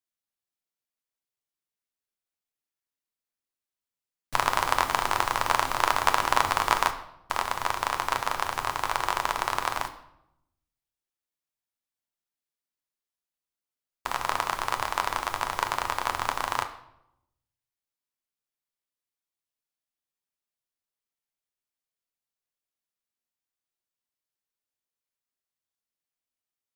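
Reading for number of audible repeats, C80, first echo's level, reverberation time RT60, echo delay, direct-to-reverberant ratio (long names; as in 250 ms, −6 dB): no echo audible, 15.0 dB, no echo audible, 0.80 s, no echo audible, 6.0 dB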